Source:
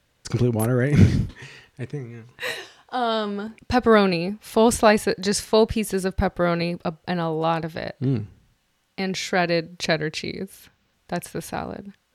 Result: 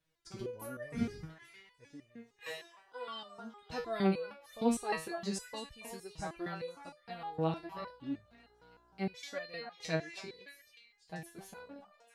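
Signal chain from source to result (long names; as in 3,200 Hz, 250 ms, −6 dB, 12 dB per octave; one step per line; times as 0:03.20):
0:07.11–0:09.13: hum with harmonics 60 Hz, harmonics 28, −44 dBFS −4 dB per octave
echo through a band-pass that steps 281 ms, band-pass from 970 Hz, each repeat 1.4 octaves, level −5.5 dB
step-sequenced resonator 6.5 Hz 160–600 Hz
level −3.5 dB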